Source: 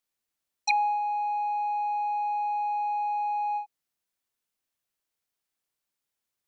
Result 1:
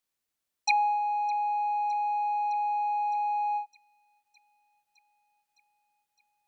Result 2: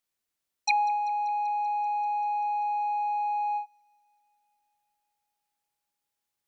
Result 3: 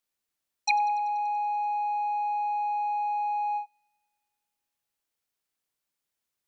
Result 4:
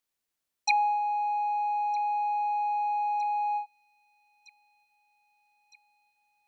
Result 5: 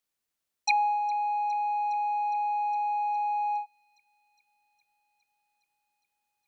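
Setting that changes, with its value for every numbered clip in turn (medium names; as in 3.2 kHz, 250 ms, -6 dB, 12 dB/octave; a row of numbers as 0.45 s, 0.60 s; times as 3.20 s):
feedback echo behind a high-pass, time: 611 ms, 194 ms, 96 ms, 1261 ms, 411 ms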